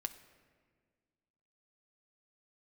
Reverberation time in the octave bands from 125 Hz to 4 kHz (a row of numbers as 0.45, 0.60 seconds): 2.1, 2.2, 1.9, 1.5, 1.5, 1.1 seconds